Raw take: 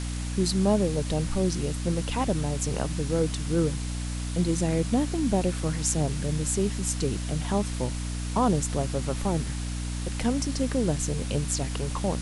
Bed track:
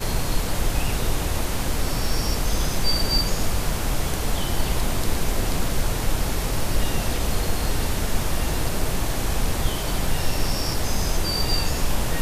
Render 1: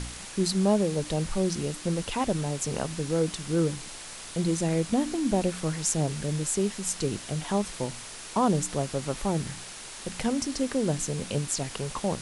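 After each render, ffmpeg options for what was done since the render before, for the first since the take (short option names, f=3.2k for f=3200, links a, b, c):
-af "bandreject=f=60:t=h:w=4,bandreject=f=120:t=h:w=4,bandreject=f=180:t=h:w=4,bandreject=f=240:t=h:w=4,bandreject=f=300:t=h:w=4"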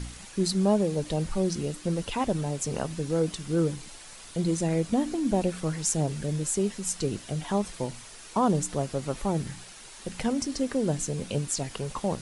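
-af "afftdn=nr=7:nf=-42"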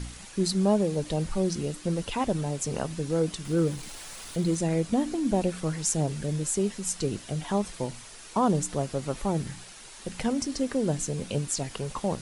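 -filter_complex "[0:a]asettb=1/sr,asplit=3[a][b][c];[a]atrim=end=3.454[d];[b]atrim=start=3.45:end=4.55,asetpts=PTS-STARTPTS,afade=t=in:d=0.004:c=qsin,afade=t=out:st=1.096:d=0.004:c=qsin,aeval=exprs='val(0)+0.5*0.00708*sgn(val(0))':c=same[e];[c]atrim=start=4.546[f];[d][e]acrossfade=d=0.004:c1=hsin:c2=qsin[g];[g][f]acrossfade=d=0.004:c1=qsin:c2=hsin"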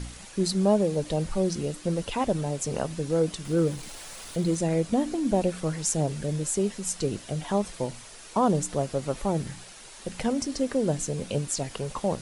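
-af "equalizer=f=570:t=o:w=0.75:g=3.5"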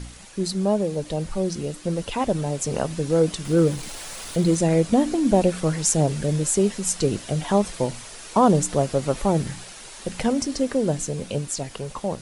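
-af "dynaudnorm=f=550:g=9:m=6.5dB"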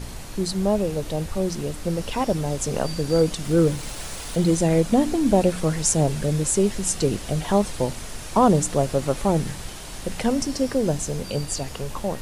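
-filter_complex "[1:a]volume=-13.5dB[a];[0:a][a]amix=inputs=2:normalize=0"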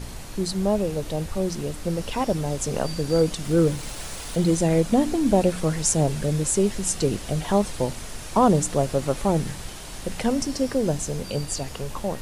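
-af "volume=-1dB"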